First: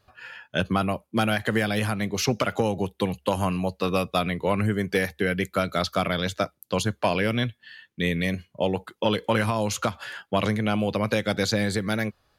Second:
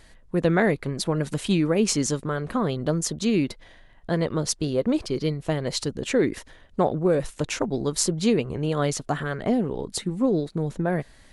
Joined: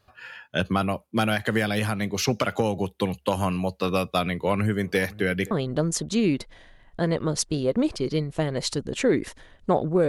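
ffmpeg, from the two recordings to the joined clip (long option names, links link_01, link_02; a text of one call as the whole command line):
ffmpeg -i cue0.wav -i cue1.wav -filter_complex "[0:a]asplit=3[link_01][link_02][link_03];[link_01]afade=type=out:start_time=4.82:duration=0.02[link_04];[link_02]asplit=2[link_05][link_06];[link_06]adelay=519,lowpass=frequency=1100:poles=1,volume=-19.5dB,asplit=2[link_07][link_08];[link_08]adelay=519,lowpass=frequency=1100:poles=1,volume=0.33,asplit=2[link_09][link_10];[link_10]adelay=519,lowpass=frequency=1100:poles=1,volume=0.33[link_11];[link_05][link_07][link_09][link_11]amix=inputs=4:normalize=0,afade=type=in:start_time=4.82:duration=0.02,afade=type=out:start_time=5.51:duration=0.02[link_12];[link_03]afade=type=in:start_time=5.51:duration=0.02[link_13];[link_04][link_12][link_13]amix=inputs=3:normalize=0,apad=whole_dur=10.08,atrim=end=10.08,atrim=end=5.512[link_14];[1:a]atrim=start=2.608:end=7.18[link_15];[link_14][link_15]acrossfade=duration=0.004:curve1=hsin:curve2=hsin" out.wav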